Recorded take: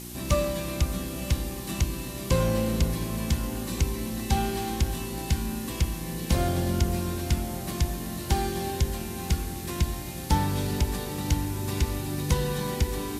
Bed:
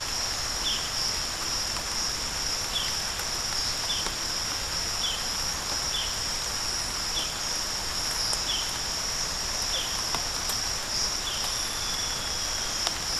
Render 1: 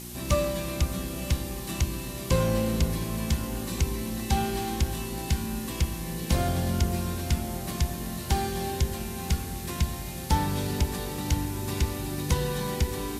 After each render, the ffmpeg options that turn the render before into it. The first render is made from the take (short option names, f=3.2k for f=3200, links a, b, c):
-af "bandreject=f=50:t=h:w=4,bandreject=f=100:t=h:w=4,bandreject=f=150:t=h:w=4,bandreject=f=200:t=h:w=4,bandreject=f=250:t=h:w=4,bandreject=f=300:t=h:w=4,bandreject=f=350:t=h:w=4,bandreject=f=400:t=h:w=4,bandreject=f=450:t=h:w=4,bandreject=f=500:t=h:w=4,bandreject=f=550:t=h:w=4"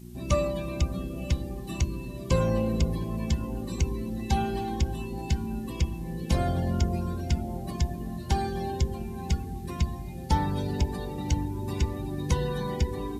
-af "afftdn=nr=17:nf=-36"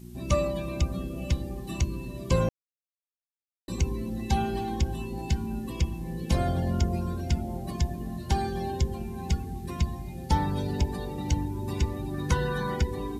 -filter_complex "[0:a]asettb=1/sr,asplit=3[a][b][c];[a]atrim=end=12.144[d];[b]atrim=start=12.14:end=12.82,asetpts=PTS-STARTPTS,afade=t=in:d=0.004:c=qsin,afade=t=out:st=0.676:d=0.004:c=qsin,equalizer=f=1.4k:t=o:w=0.58:g=12.5[e];[c]atrim=start=12.816[f];[d][e]acrossfade=d=0.004:c1=hsin:c2=qsin[g];[g][f]acrossfade=d=0.004:c1=qsin:c2=hsin,asplit=3[h][i][j];[h]atrim=end=2.49,asetpts=PTS-STARTPTS,afade=t=out:st=2.486:d=0.004:c=hsin[k];[i]atrim=start=2.49:end=3.68,asetpts=PTS-STARTPTS,volume=0[l];[j]atrim=start=3.68,asetpts=PTS-STARTPTS,afade=t=in:d=0.004:c=hsin[m];[k][l][m]concat=n=3:v=0:a=1"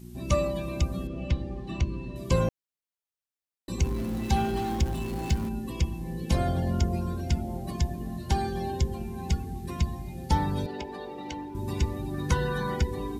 -filter_complex "[0:a]asettb=1/sr,asplit=3[a][b][c];[a]atrim=end=1.074[d];[b]atrim=start=1.07:end=2.16,asetpts=PTS-STARTPTS,afade=t=in:d=0.004:c=qsin,afade=t=out:st=1.086:d=0.004:c=qsin,lowpass=3.7k[e];[c]atrim=start=2.156[f];[d][e]acrossfade=d=0.004:c1=hsin:c2=qsin[g];[g][f]acrossfade=d=0.004:c1=qsin:c2=hsin,asettb=1/sr,asplit=3[h][i][j];[h]atrim=end=3.814[k];[i]atrim=start=3.81:end=5.49,asetpts=PTS-STARTPTS,afade=t=in:d=0.004:c=qsin,afade=t=out:st=1.676:d=0.004:c=qsin,aeval=exprs='val(0)+0.5*0.015*sgn(val(0))':c=same[l];[j]atrim=start=5.486[m];[k][l]acrossfade=d=0.004:c1=hsin:c2=qsin[n];[n][m]acrossfade=d=0.004:c1=qsin:c2=hsin,asettb=1/sr,asplit=3[o][p][q];[o]atrim=end=10.664[r];[p]atrim=start=10.66:end=11.55,asetpts=PTS-STARTPTS,afade=t=in:d=0.004:c=qsin,afade=t=out:st=0.886:d=0.004:c=qsin,acrossover=split=270 4400:gain=0.0891 1 0.178[s][t][u];[s][t][u]amix=inputs=3:normalize=0[v];[q]atrim=start=11.546[w];[r][v]acrossfade=d=0.004:c1=hsin:c2=qsin[x];[x][w]acrossfade=d=0.004:c1=qsin:c2=hsin"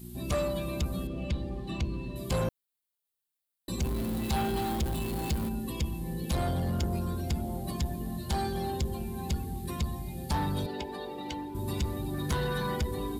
-af "aexciter=amount=2:drive=1.1:freq=3.3k,asoftclip=type=tanh:threshold=-24dB"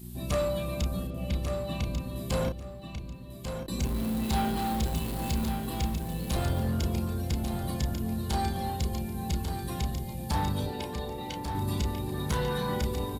-filter_complex "[0:a]asplit=2[a][b];[b]adelay=32,volume=-5.5dB[c];[a][c]amix=inputs=2:normalize=0,aecho=1:1:1143|2286|3429:0.447|0.0983|0.0216"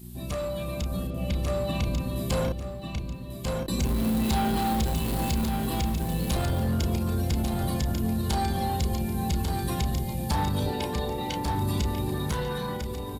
-af "alimiter=level_in=1dB:limit=-24dB:level=0:latency=1:release=44,volume=-1dB,dynaudnorm=f=170:g=13:m=6dB"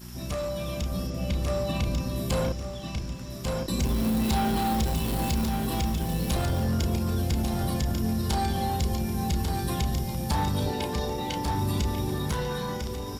-filter_complex "[1:a]volume=-19.5dB[a];[0:a][a]amix=inputs=2:normalize=0"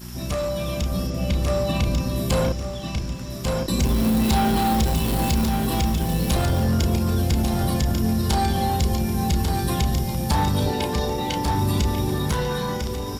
-af "volume=5.5dB"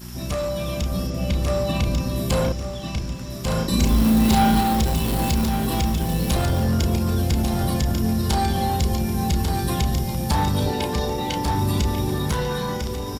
-filter_complex "[0:a]asplit=3[a][b][c];[a]afade=t=out:st=3.49:d=0.02[d];[b]asplit=2[e][f];[f]adelay=37,volume=-3dB[g];[e][g]amix=inputs=2:normalize=0,afade=t=in:st=3.49:d=0.02,afade=t=out:st=4.6:d=0.02[h];[c]afade=t=in:st=4.6:d=0.02[i];[d][h][i]amix=inputs=3:normalize=0"